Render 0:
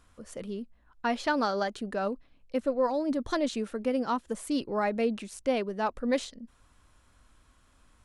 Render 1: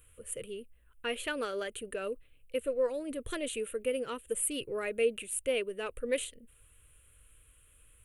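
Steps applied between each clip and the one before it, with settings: EQ curve 130 Hz 0 dB, 200 Hz -15 dB, 300 Hz -10 dB, 470 Hz +2 dB, 810 Hz -20 dB, 1300 Hz -7 dB, 1900 Hz -3 dB, 2800 Hz +6 dB, 5200 Hz -19 dB, 9000 Hz +13 dB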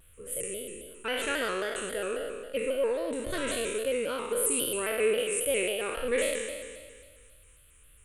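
spectral trails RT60 1.71 s; thin delay 0.257 s, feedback 64%, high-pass 3100 Hz, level -19 dB; shaped vibrato square 3.7 Hz, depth 100 cents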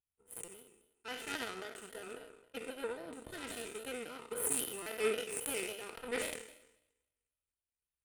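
power-law curve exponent 2; notch comb 560 Hz; stuck buffer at 0.44/4.82, samples 256, times 6; gain +3 dB

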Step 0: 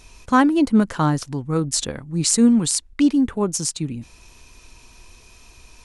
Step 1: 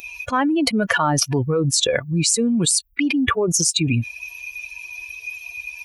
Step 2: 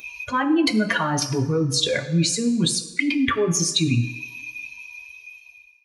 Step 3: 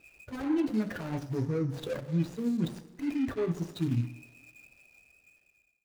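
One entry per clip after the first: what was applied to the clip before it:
per-bin expansion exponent 2; HPF 330 Hz 12 dB/oct; fast leveller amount 100%; gain -3 dB
ending faded out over 1.45 s; reverb RT60 1.1 s, pre-delay 3 ms, DRR 3.5 dB; gain -8 dB
median filter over 41 samples; gain -8 dB

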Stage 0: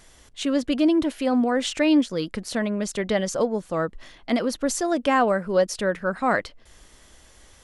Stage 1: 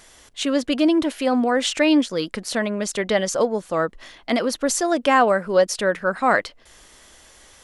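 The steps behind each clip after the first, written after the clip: low shelf 240 Hz -9.5 dB; gain +5 dB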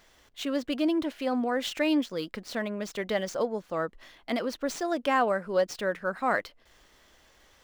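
median filter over 5 samples; gain -8.5 dB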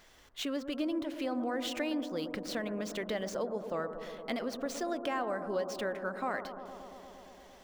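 compressor 3:1, threshold -34 dBFS, peak gain reduction 11 dB; on a send: analogue delay 0.115 s, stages 1024, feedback 84%, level -10.5 dB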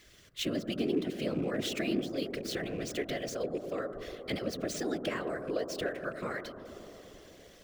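rattling part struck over -42 dBFS, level -43 dBFS; fixed phaser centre 350 Hz, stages 4; whisperiser; gain +3.5 dB

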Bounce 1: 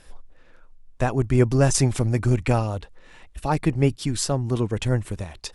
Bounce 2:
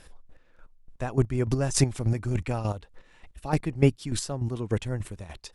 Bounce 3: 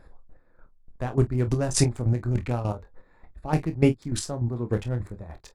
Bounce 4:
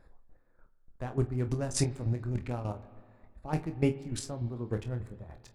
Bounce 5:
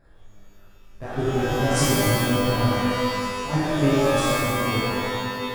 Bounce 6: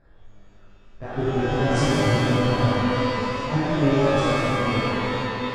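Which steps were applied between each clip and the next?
chopper 3.4 Hz, depth 65%, duty 25%
Wiener smoothing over 15 samples; on a send: early reflections 25 ms -8.5 dB, 47 ms -17 dB; on the sum: gain +1 dB
spring tank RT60 1.9 s, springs 44/56 ms, chirp 30 ms, DRR 14.5 dB; gain -7.5 dB
ending faded out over 1.07 s; shimmer reverb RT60 1.8 s, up +12 st, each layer -2 dB, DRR -9 dB
air absorption 110 m; warbling echo 0.168 s, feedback 69%, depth 198 cents, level -9 dB

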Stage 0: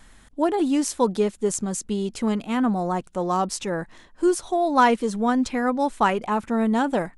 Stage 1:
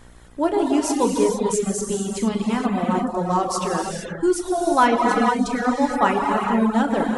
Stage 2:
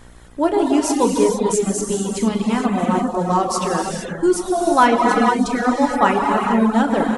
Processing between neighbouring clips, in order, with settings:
non-linear reverb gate 0.5 s flat, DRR -2.5 dB; buzz 60 Hz, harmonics 27, -48 dBFS -5 dB/oct; reverb removal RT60 0.69 s
feedback echo 1.045 s, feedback 46%, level -20 dB; gain +3 dB

